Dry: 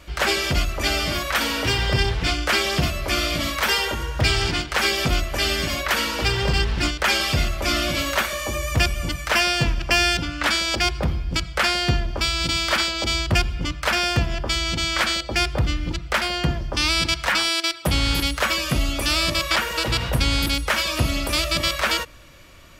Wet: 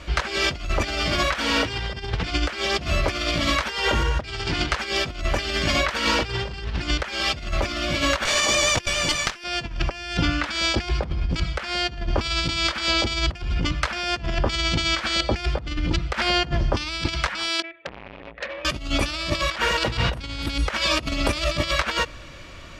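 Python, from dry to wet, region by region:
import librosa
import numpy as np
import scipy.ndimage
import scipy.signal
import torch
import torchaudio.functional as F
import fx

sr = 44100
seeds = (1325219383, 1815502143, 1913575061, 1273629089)

y = fx.chain(x, sr, fx.riaa(side='recording'),
    fx.running_max(window=3), at=(8.25, 9.44))
y = fx.chain(y, sr, fx.formant_cascade(vowel='e'),
    fx.transformer_sat(knee_hz=3900.0), at=(17.62, 18.65))
y = scipy.signal.sosfilt(scipy.signal.butter(2, 6000.0, 'lowpass', fs=sr, output='sos'), y)
y = fx.over_compress(y, sr, threshold_db=-26.0, ratio=-0.5)
y = F.gain(torch.from_numpy(y), 2.5).numpy()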